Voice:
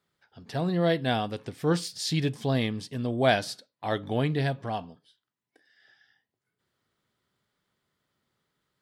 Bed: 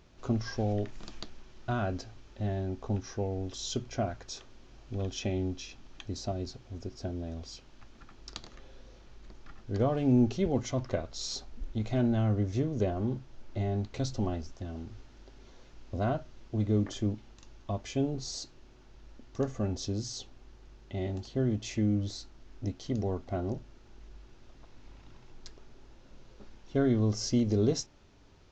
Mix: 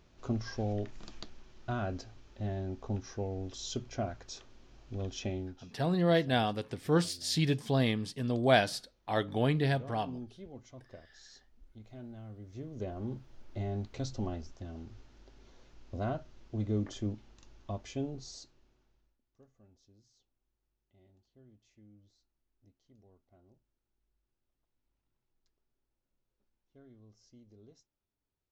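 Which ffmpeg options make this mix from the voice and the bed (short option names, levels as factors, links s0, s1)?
-filter_complex "[0:a]adelay=5250,volume=0.794[s0];[1:a]volume=3.76,afade=t=out:st=5.28:d=0.34:silence=0.158489,afade=t=in:st=12.41:d=0.9:silence=0.177828,afade=t=out:st=17.73:d=1.44:silence=0.0446684[s1];[s0][s1]amix=inputs=2:normalize=0"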